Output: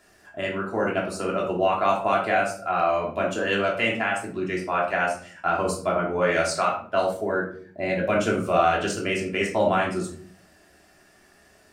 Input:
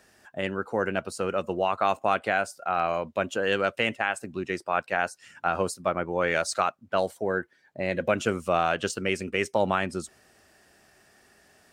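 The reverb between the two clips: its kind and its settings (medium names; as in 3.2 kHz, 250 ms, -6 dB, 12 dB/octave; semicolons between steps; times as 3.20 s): simulated room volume 510 m³, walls furnished, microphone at 3.1 m; trim -2 dB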